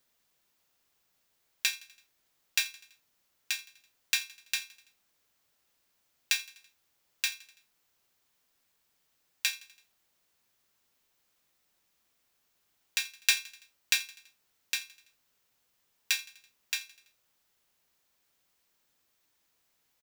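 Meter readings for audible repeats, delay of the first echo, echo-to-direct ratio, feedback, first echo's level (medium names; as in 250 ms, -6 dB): 3, 83 ms, -19.0 dB, 55%, -20.5 dB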